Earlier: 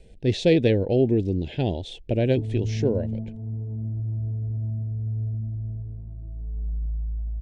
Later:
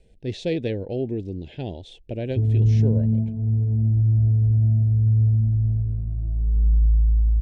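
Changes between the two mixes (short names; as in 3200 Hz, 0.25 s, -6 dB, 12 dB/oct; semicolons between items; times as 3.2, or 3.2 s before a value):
speech -6.5 dB; background: add low shelf 310 Hz +11.5 dB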